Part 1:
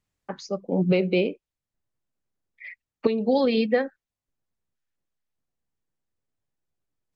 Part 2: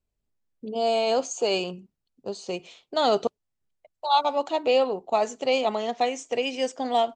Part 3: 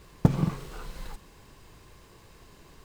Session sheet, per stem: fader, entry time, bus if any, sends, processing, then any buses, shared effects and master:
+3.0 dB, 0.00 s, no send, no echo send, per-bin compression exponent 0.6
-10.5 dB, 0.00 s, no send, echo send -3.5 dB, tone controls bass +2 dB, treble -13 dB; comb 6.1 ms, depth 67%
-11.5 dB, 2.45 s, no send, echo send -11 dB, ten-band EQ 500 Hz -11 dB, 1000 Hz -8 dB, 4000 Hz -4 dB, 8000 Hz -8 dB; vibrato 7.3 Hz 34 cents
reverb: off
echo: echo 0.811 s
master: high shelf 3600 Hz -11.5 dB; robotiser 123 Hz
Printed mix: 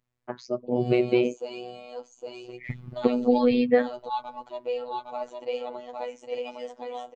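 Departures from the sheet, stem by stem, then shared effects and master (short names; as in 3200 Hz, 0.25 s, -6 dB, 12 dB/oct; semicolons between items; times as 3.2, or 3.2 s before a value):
stem 1: missing per-bin compression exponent 0.6; stem 2: missing tone controls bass +2 dB, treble -13 dB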